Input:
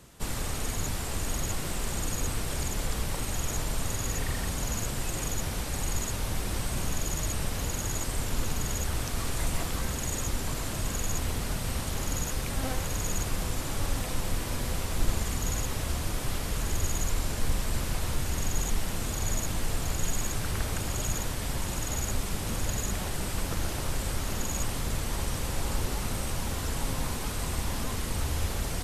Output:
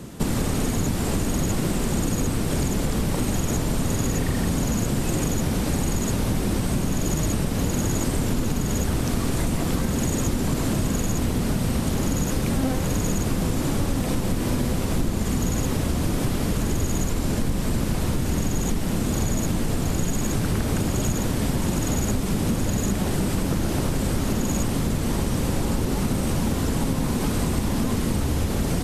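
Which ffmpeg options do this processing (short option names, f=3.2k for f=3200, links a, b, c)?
-af "equalizer=f=230:w=0.58:g=13,acompressor=threshold=-28dB:ratio=6,volume=8.5dB"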